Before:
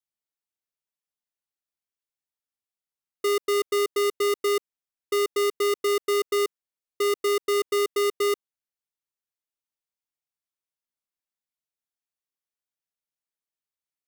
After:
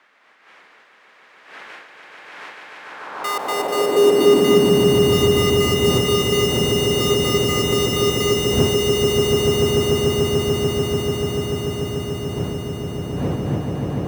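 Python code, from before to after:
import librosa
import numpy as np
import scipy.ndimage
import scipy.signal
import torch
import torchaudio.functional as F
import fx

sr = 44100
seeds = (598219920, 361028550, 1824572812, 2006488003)

y = fx.dmg_wind(x, sr, seeds[0], corner_hz=330.0, level_db=-32.0)
y = fx.echo_swell(y, sr, ms=146, loudest=8, wet_db=-4.5)
y = fx.filter_sweep_highpass(y, sr, from_hz=1900.0, to_hz=90.0, start_s=2.8, end_s=5.25, q=1.7)
y = y * librosa.db_to_amplitude(2.0)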